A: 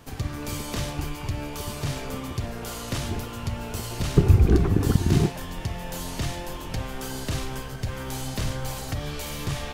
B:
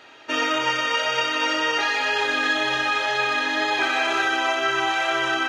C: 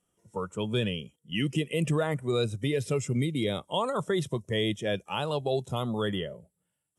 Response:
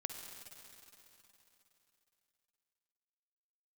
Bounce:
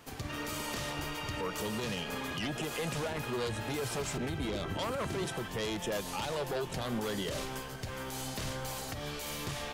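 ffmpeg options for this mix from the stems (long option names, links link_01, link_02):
-filter_complex "[0:a]alimiter=limit=-14dB:level=0:latency=1:release=295,volume=-3.5dB[link_01];[1:a]alimiter=limit=-17dB:level=0:latency=1,volume=-16dB[link_02];[2:a]aeval=exprs='0.168*(cos(1*acos(clip(val(0)/0.168,-1,1)))-cos(1*PI/2))+0.075*(cos(5*acos(clip(val(0)/0.168,-1,1)))-cos(5*PI/2))':channel_layout=same,adelay=1050,volume=-6.5dB[link_03];[link_01][link_02][link_03]amix=inputs=3:normalize=0,lowshelf=frequency=150:gain=-11,alimiter=level_in=2.5dB:limit=-24dB:level=0:latency=1:release=103,volume=-2.5dB"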